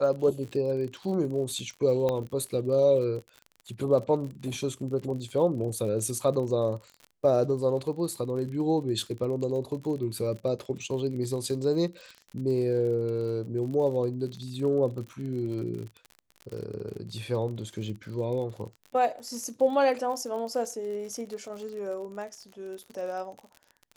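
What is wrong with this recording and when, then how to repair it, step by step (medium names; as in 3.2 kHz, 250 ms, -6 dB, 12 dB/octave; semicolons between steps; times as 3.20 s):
crackle 49 per s -36 dBFS
2.09 s: pop -16 dBFS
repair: de-click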